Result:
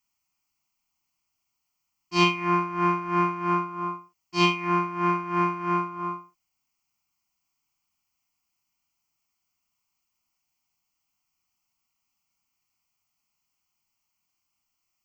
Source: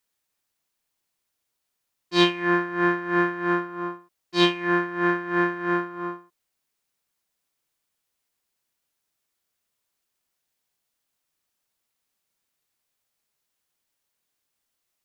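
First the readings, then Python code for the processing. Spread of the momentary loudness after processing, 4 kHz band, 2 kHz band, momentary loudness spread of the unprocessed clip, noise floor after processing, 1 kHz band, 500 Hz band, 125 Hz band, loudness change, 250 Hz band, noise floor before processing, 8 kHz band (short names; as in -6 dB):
11 LU, -3.5 dB, -5.5 dB, 13 LU, -80 dBFS, +3.5 dB, -5.0 dB, +2.5 dB, -1.5 dB, -3.5 dB, -80 dBFS, n/a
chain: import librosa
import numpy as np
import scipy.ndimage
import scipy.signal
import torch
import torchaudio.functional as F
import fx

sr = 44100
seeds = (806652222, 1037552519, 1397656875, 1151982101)

y = fx.fixed_phaser(x, sr, hz=2500.0, stages=8)
y = fx.doubler(y, sr, ms=45.0, db=-8)
y = y * 10.0 ** (2.0 / 20.0)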